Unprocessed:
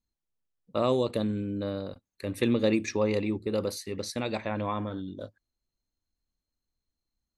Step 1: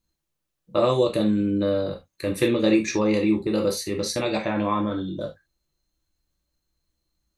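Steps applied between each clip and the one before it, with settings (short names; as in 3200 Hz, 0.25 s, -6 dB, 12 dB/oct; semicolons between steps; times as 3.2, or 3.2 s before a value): in parallel at +1.5 dB: compressor, threshold -32 dBFS, peak gain reduction 12 dB; on the sum: non-linear reverb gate 0.1 s falling, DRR 1 dB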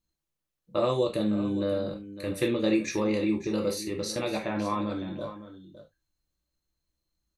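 echo 0.558 s -13.5 dB; gain -5.5 dB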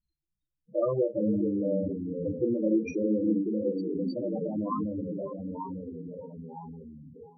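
echoes that change speed 0.311 s, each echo -2 st, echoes 2, each echo -6 dB; loudest bins only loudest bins 8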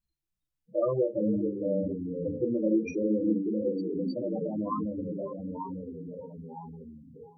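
notches 50/100/150/200/250/300/350 Hz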